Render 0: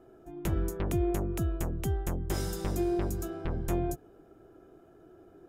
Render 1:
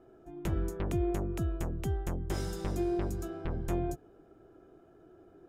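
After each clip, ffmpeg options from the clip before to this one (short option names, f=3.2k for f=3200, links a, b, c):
-af "highshelf=f=9.9k:g=-11,volume=-2dB"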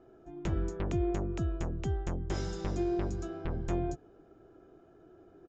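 -af "aresample=16000,aresample=44100"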